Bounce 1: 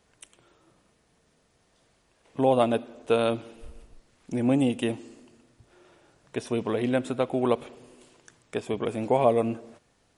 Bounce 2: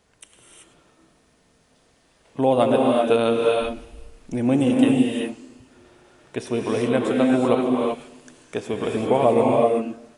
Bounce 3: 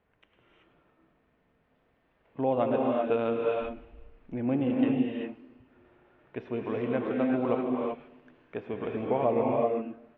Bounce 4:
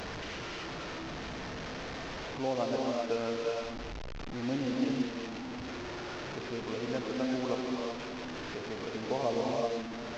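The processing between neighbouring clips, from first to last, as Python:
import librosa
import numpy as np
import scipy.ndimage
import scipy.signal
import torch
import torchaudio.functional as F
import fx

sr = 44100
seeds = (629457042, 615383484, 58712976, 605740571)

y1 = fx.rev_gated(x, sr, seeds[0], gate_ms=410, shape='rising', drr_db=-1.0)
y1 = F.gain(torch.from_numpy(y1), 2.5).numpy()
y2 = scipy.signal.sosfilt(scipy.signal.butter(4, 2600.0, 'lowpass', fs=sr, output='sos'), y1)
y2 = F.gain(torch.from_numpy(y2), -8.5).numpy()
y3 = fx.delta_mod(y2, sr, bps=32000, step_db=-28.5)
y3 = F.gain(torch.from_numpy(y3), -5.5).numpy()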